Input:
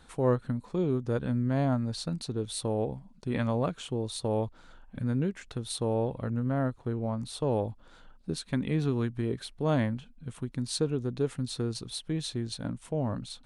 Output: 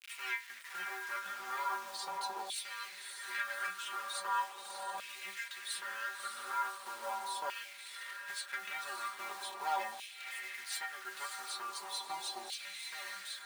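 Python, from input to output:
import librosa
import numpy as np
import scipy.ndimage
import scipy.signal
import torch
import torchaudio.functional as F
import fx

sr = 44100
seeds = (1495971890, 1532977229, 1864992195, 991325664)

p1 = np.minimum(x, 2.0 * 10.0 ** (-29.5 / 20.0) - x)
p2 = fx.high_shelf(p1, sr, hz=7800.0, db=4.0)
p3 = fx.stiff_resonator(p2, sr, f0_hz=190.0, decay_s=0.25, stiffness=0.002)
p4 = fx.quant_dither(p3, sr, seeds[0], bits=10, dither='none')
p5 = p4 + fx.echo_diffused(p4, sr, ms=592, feedback_pct=48, wet_db=-8, dry=0)
p6 = fx.filter_lfo_highpass(p5, sr, shape='saw_down', hz=0.4, low_hz=790.0, high_hz=2500.0, q=3.6)
p7 = fx.band_squash(p6, sr, depth_pct=40)
y = F.gain(torch.from_numpy(p7), 7.0).numpy()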